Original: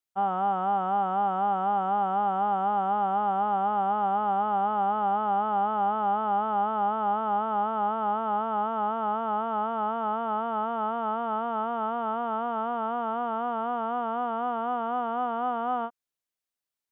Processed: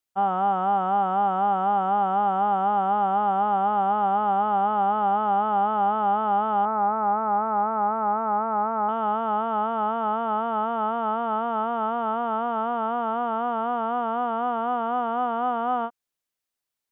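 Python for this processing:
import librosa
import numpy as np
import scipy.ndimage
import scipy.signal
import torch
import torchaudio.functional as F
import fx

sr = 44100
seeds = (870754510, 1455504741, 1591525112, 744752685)

y = fx.ellip_lowpass(x, sr, hz=2300.0, order=4, stop_db=40, at=(6.65, 8.89))
y = y * 10.0 ** (3.5 / 20.0)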